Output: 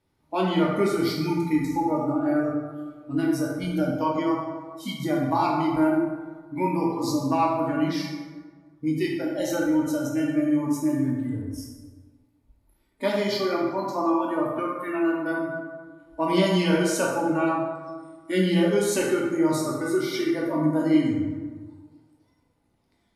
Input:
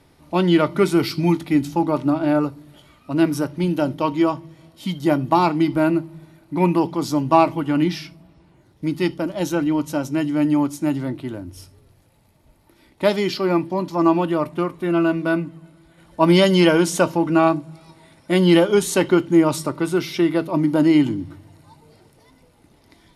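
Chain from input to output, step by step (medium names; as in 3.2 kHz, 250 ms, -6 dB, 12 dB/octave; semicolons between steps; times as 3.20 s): spectral noise reduction 19 dB; compression 2:1, threshold -27 dBFS, peak gain reduction 10 dB; plate-style reverb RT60 1.5 s, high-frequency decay 0.5×, DRR -3 dB; trim -2 dB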